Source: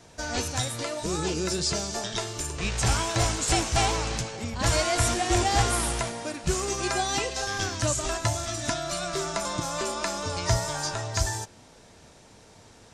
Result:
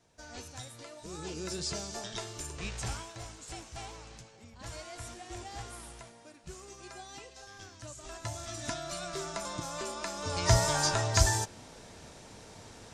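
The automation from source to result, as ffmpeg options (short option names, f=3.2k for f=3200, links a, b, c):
-af "volume=13.5dB,afade=t=in:st=1.02:d=0.58:silence=0.421697,afade=t=out:st=2.59:d=0.56:silence=0.266073,afade=t=in:st=7.96:d=0.66:silence=0.251189,afade=t=in:st=10.16:d=0.48:silence=0.316228"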